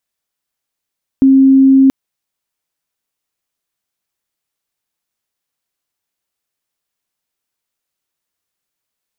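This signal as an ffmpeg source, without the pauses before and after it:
-f lavfi -i "sine=f=268:d=0.68:r=44100,volume=14.06dB"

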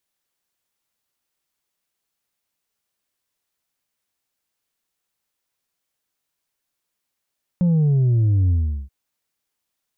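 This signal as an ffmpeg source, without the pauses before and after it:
-f lavfi -i "aevalsrc='0.188*clip((1.28-t)/0.39,0,1)*tanh(1.41*sin(2*PI*180*1.28/log(65/180)*(exp(log(65/180)*t/1.28)-1)))/tanh(1.41)':d=1.28:s=44100"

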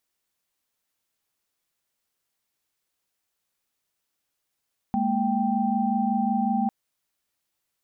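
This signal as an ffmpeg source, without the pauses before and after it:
-f lavfi -i "aevalsrc='0.0531*(sin(2*PI*207.65*t)+sin(2*PI*233.08*t)+sin(2*PI*783.99*t))':d=1.75:s=44100"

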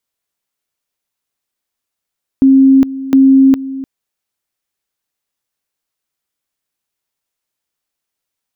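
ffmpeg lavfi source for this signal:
-f lavfi -i "aevalsrc='pow(10,(-3.5-16*gte(mod(t,0.71),0.41))/20)*sin(2*PI*268*t)':d=1.42:s=44100"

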